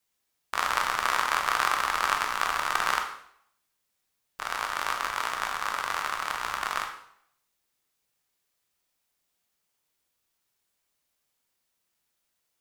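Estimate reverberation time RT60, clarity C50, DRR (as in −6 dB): 0.65 s, 7.0 dB, 3.0 dB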